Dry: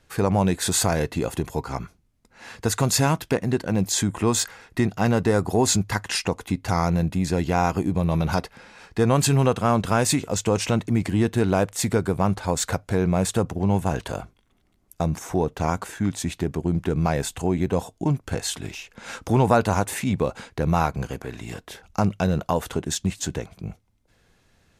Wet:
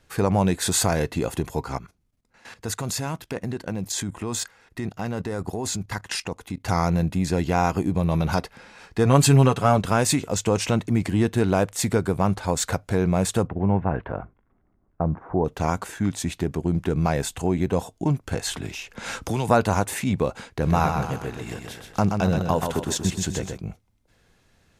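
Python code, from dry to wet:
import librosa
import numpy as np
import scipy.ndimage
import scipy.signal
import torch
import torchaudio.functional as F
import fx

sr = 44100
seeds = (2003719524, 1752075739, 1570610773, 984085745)

y = fx.level_steps(x, sr, step_db=14, at=(1.78, 6.65))
y = fx.comb(y, sr, ms=7.1, depth=0.65, at=(9.05, 9.78))
y = fx.lowpass(y, sr, hz=fx.line((13.46, 2300.0), (15.44, 1300.0)), slope=24, at=(13.46, 15.44), fade=0.02)
y = fx.band_squash(y, sr, depth_pct=70, at=(18.47, 19.49))
y = fx.echo_feedback(y, sr, ms=128, feedback_pct=46, wet_db=-5.5, at=(20.61, 23.56), fade=0.02)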